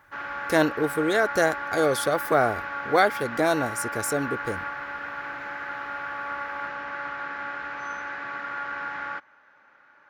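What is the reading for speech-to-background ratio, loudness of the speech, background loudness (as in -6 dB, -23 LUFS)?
7.5 dB, -25.0 LUFS, -32.5 LUFS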